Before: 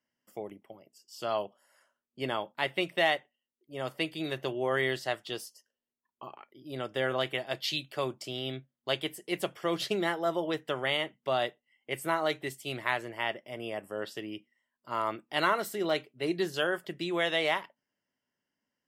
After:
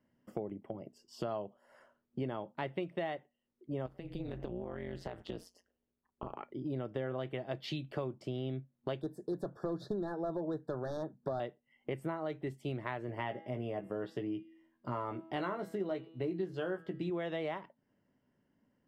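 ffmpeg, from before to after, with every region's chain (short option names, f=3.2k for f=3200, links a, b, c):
-filter_complex "[0:a]asettb=1/sr,asplit=3[a][b][c];[a]atrim=end=3.864[d];[b]atrim=start=3.86:end=6.35,asetpts=PTS-STARTPTS,afade=t=in:d=0.004:c=qsin,afade=t=out:st=2.486:d=0.004:c=qsin,tremolo=f=180:d=0.947,acompressor=threshold=-43dB:ratio=16:attack=3.2:release=140:knee=1:detection=peak[e];[c]atrim=start=6.346[f];[d][e]acrossfade=d=0.004:c1=hsin:c2=qsin[g];[g][f]acrossfade=d=0.004:c1=qsin:c2=hsin,asettb=1/sr,asplit=3[h][i][j];[h]atrim=end=9.014[k];[i]atrim=start=9.01:end=11.4,asetpts=PTS-STARTPTS,afade=t=in:d=0.004:c=qsin,afade=t=out:st=2.386:d=0.004:c=qsin,asoftclip=type=hard:threshold=-25dB,asuperstop=centerf=2500:order=20:qfactor=1.4[l];[j]atrim=start=11.396[m];[k][l]acrossfade=d=0.004:c1=hsin:c2=qsin[n];[n][m]acrossfade=d=0.004:c1=qsin:c2=hsin,asettb=1/sr,asplit=3[o][p][q];[o]atrim=end=13.074[r];[p]atrim=start=13.07:end=17.1,asetpts=PTS-STARTPTS,afade=t=in:d=0.004:c=qsin,afade=t=out:st=4.026:d=0.004:c=qsin,bandreject=f=162.9:t=h:w=4,bandreject=f=325.8:t=h:w=4,bandreject=f=488.7:t=h:w=4,bandreject=f=651.6:t=h:w=4,bandreject=f=814.5:t=h:w=4,bandreject=f=977.4:t=h:w=4,bandreject=f=1.1403k:t=h:w=4,bandreject=f=1.3032k:t=h:w=4,bandreject=f=1.4661k:t=h:w=4,bandreject=f=1.629k:t=h:w=4,bandreject=f=1.7919k:t=h:w=4,bandreject=f=1.9548k:t=h:w=4,bandreject=f=2.1177k:t=h:w=4,bandreject=f=2.2806k:t=h:w=4,bandreject=f=2.4435k:t=h:w=4,bandreject=f=2.6064k:t=h:w=4,bandreject=f=2.7693k:t=h:w=4,bandreject=f=2.9322k:t=h:w=4,bandreject=f=3.0951k:t=h:w=4,bandreject=f=3.258k:t=h:w=4,bandreject=f=3.4209k:t=h:w=4,bandreject=f=3.5838k:t=h:w=4,bandreject=f=3.7467k:t=h:w=4,bandreject=f=3.9096k:t=h:w=4,bandreject=f=4.0725k:t=h:w=4,bandreject=f=4.2354k:t=h:w=4,bandreject=f=4.3983k:t=h:w=4,bandreject=f=4.5612k:t=h:w=4,bandreject=f=4.7241k:t=h:w=4,bandreject=f=4.887k:t=h:w=4,acrusher=bits=8:mode=log:mix=0:aa=0.000001,asplit=2[s][t];[t]adelay=16,volume=-6dB[u];[s][u]amix=inputs=2:normalize=0,atrim=end_sample=177723[v];[q]atrim=start=17.096[w];[r][v]acrossfade=d=0.004:c1=hsin:c2=qsin[x];[x][w]acrossfade=d=0.004:c1=qsin:c2=hsin,lowpass=f=1.1k:p=1,lowshelf=f=410:g=11,acompressor=threshold=-44dB:ratio=5,volume=7.5dB"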